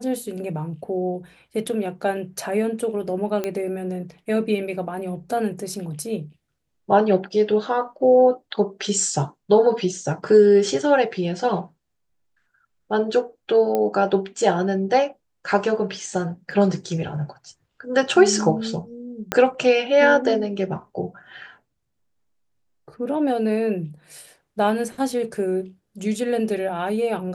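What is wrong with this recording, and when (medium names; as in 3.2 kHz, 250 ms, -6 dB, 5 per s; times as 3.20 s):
3.44 s: pop -12 dBFS
13.75 s: pop -11 dBFS
16.51 s: dropout 2.9 ms
19.32 s: pop -6 dBFS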